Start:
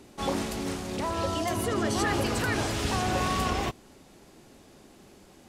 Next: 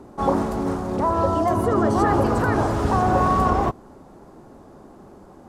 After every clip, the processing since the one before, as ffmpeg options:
ffmpeg -i in.wav -af "highshelf=frequency=1700:width_type=q:width=1.5:gain=-14,volume=8dB" out.wav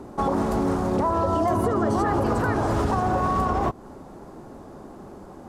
ffmpeg -i in.wav -af "alimiter=limit=-17.5dB:level=0:latency=1:release=173,volume=3.5dB" out.wav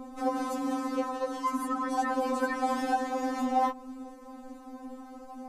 ffmpeg -i in.wav -af "afftfilt=real='re*3.46*eq(mod(b,12),0)':imag='im*3.46*eq(mod(b,12),0)':win_size=2048:overlap=0.75" out.wav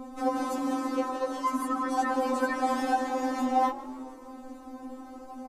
ffmpeg -i in.wav -filter_complex "[0:a]asplit=5[link_01][link_02][link_03][link_04][link_05];[link_02]adelay=154,afreqshift=46,volume=-18dB[link_06];[link_03]adelay=308,afreqshift=92,volume=-24.4dB[link_07];[link_04]adelay=462,afreqshift=138,volume=-30.8dB[link_08];[link_05]adelay=616,afreqshift=184,volume=-37.1dB[link_09];[link_01][link_06][link_07][link_08][link_09]amix=inputs=5:normalize=0,volume=1.5dB" out.wav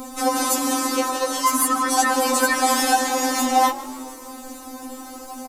ffmpeg -i in.wav -af "crystalizer=i=8.5:c=0,volume=4.5dB" out.wav

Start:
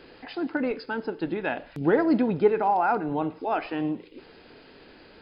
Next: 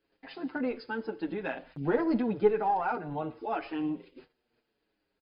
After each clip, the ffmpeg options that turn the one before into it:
ffmpeg -i in.wav -filter_complex "[0:a]agate=range=-23dB:threshold=-46dB:ratio=16:detection=peak,aeval=exprs='0.355*(cos(1*acos(clip(val(0)/0.355,-1,1)))-cos(1*PI/2))+0.0447*(cos(2*acos(clip(val(0)/0.355,-1,1)))-cos(2*PI/2))+0.00282*(cos(8*acos(clip(val(0)/0.355,-1,1)))-cos(8*PI/2))':channel_layout=same,asplit=2[link_01][link_02];[link_02]adelay=6.8,afreqshift=-0.82[link_03];[link_01][link_03]amix=inputs=2:normalize=1,volume=-3dB" out.wav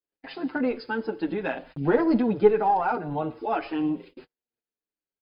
ffmpeg -i in.wav -af "agate=range=-26dB:threshold=-52dB:ratio=16:detection=peak,adynamicequalizer=threshold=0.00398:dfrequency=2000:dqfactor=1.2:tfrequency=2000:tqfactor=1.2:attack=5:release=100:ratio=0.375:range=2.5:mode=cutabove:tftype=bell,volume=6dB" out.wav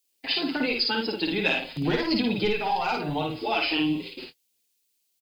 ffmpeg -i in.wav -filter_complex "[0:a]acrossover=split=140|2000[link_01][link_02][link_03];[link_02]acompressor=threshold=-29dB:ratio=6[link_04];[link_01][link_04][link_03]amix=inputs=3:normalize=0,aecho=1:1:53|78:0.708|0.168,aexciter=amount=5.9:drive=5.4:freq=2300,volume=2.5dB" out.wav

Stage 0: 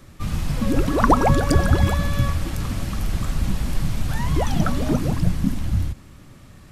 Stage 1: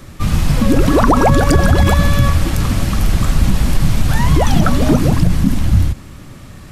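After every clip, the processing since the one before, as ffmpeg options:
ffmpeg -i in.wav -af "alimiter=level_in=11dB:limit=-1dB:release=50:level=0:latency=1,volume=-1dB" out.wav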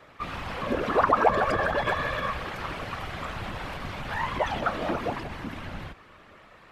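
ffmpeg -i in.wav -filter_complex "[0:a]acrossover=split=440 3300:gain=0.1 1 0.0794[link_01][link_02][link_03];[link_01][link_02][link_03]amix=inputs=3:normalize=0,afftfilt=real='hypot(re,im)*cos(2*PI*random(0))':imag='hypot(re,im)*sin(2*PI*random(1))':win_size=512:overlap=0.75" out.wav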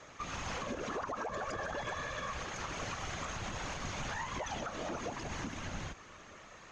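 ffmpeg -i in.wav -af "lowpass=frequency=6500:width_type=q:width=12,alimiter=level_in=3.5dB:limit=-24dB:level=0:latency=1:release=309,volume=-3.5dB,volume=-2dB" out.wav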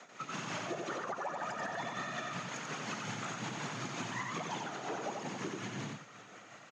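ffmpeg -i in.wav -af "afreqshift=110,tremolo=f=5.5:d=0.67,aecho=1:1:90:0.668,volume=1dB" out.wav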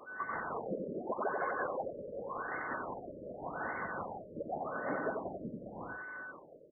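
ffmpeg -i in.wav -af "highpass=frequency=390:width_type=q:width=0.5412,highpass=frequency=390:width_type=q:width=1.307,lowpass=frequency=3300:width_type=q:width=0.5176,lowpass=frequency=3300:width_type=q:width=0.7071,lowpass=frequency=3300:width_type=q:width=1.932,afreqshift=-160,aeval=exprs='val(0)+0.00447*sin(2*PI*1500*n/s)':channel_layout=same,afftfilt=real='re*lt(b*sr/1024,610*pow(2200/610,0.5+0.5*sin(2*PI*0.86*pts/sr)))':imag='im*lt(b*sr/1024,610*pow(2200/610,0.5+0.5*sin(2*PI*0.86*pts/sr)))':win_size=1024:overlap=0.75,volume=4dB" out.wav

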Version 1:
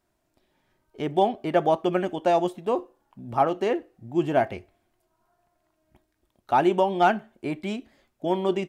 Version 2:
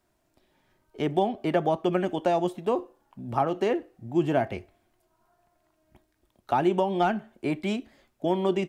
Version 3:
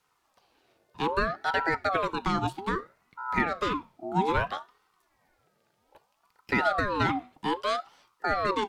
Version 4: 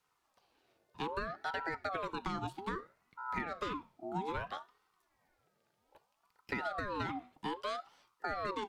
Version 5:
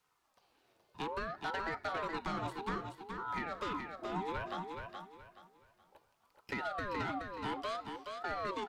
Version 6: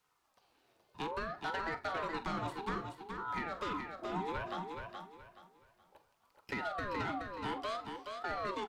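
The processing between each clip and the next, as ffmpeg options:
ffmpeg -i in.wav -filter_complex "[0:a]acrossover=split=250[link_01][link_02];[link_02]acompressor=threshold=-25dB:ratio=3[link_03];[link_01][link_03]amix=inputs=2:normalize=0,volume=2dB" out.wav
ffmpeg -i in.wav -af "equalizer=frequency=125:width_type=o:width=1:gain=6,equalizer=frequency=500:width_type=o:width=1:gain=-7,equalizer=frequency=4000:width_type=o:width=1:gain=6,afreqshift=31,aeval=exprs='val(0)*sin(2*PI*830*n/s+830*0.4/0.62*sin(2*PI*0.62*n/s))':channel_layout=same,volume=2.5dB" out.wav
ffmpeg -i in.wav -af "acompressor=threshold=-27dB:ratio=6,volume=-6.5dB" out.wav
ffmpeg -i in.wav -filter_complex "[0:a]asoftclip=type=tanh:threshold=-30.5dB,asplit=2[link_01][link_02];[link_02]aecho=0:1:424|848|1272|1696:0.531|0.149|0.0416|0.0117[link_03];[link_01][link_03]amix=inputs=2:normalize=0,volume=1dB" out.wav
ffmpeg -i in.wav -filter_complex "[0:a]asplit=2[link_01][link_02];[link_02]adelay=45,volume=-13dB[link_03];[link_01][link_03]amix=inputs=2:normalize=0" out.wav

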